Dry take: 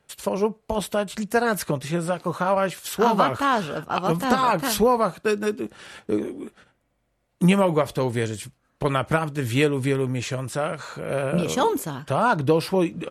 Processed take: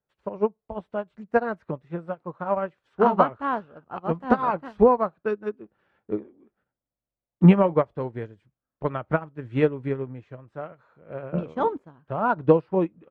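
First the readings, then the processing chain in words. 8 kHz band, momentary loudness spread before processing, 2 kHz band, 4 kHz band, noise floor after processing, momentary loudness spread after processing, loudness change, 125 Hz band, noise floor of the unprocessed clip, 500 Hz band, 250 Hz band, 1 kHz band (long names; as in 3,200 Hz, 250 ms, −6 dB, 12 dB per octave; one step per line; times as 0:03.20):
below −35 dB, 9 LU, −7.0 dB, below −15 dB, below −85 dBFS, 19 LU, −1.5 dB, −1.5 dB, −71 dBFS, −1.5 dB, −1.0 dB, −3.0 dB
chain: low-pass filter 1,500 Hz 12 dB per octave
expander for the loud parts 2.5 to 1, over −32 dBFS
level +5.5 dB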